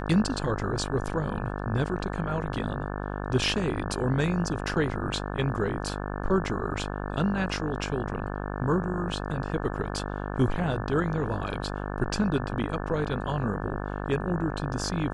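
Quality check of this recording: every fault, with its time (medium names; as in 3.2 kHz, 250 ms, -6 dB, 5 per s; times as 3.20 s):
buzz 50 Hz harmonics 35 -33 dBFS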